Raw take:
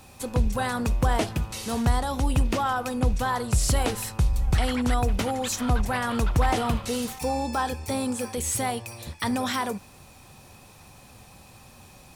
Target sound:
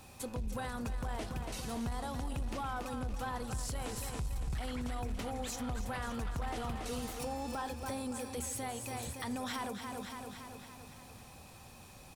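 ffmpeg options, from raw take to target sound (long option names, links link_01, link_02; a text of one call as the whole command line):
ffmpeg -i in.wav -af "aecho=1:1:282|564|846|1128|1410|1692|1974:0.335|0.198|0.117|0.0688|0.0406|0.0239|0.0141,aeval=exprs='(tanh(5.62*val(0)+0.2)-tanh(0.2))/5.62':channel_layout=same,alimiter=level_in=1.5dB:limit=-24dB:level=0:latency=1:release=281,volume=-1.5dB,volume=-4.5dB" out.wav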